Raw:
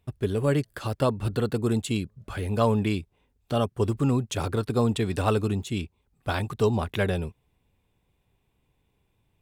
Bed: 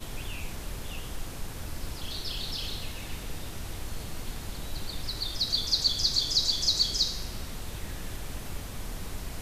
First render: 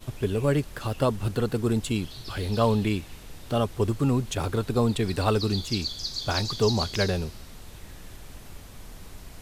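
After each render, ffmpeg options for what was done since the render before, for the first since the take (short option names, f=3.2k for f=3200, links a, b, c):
-filter_complex "[1:a]volume=-6.5dB[a];[0:a][a]amix=inputs=2:normalize=0"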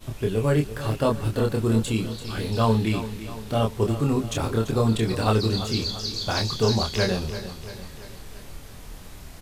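-filter_complex "[0:a]asplit=2[a][b];[b]adelay=27,volume=-3dB[c];[a][c]amix=inputs=2:normalize=0,aecho=1:1:340|680|1020|1360|1700|2040:0.237|0.128|0.0691|0.0373|0.0202|0.0109"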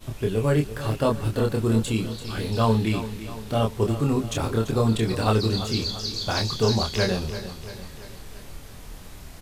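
-af anull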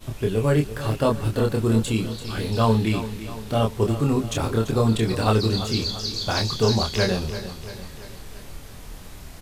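-af "volume=1.5dB"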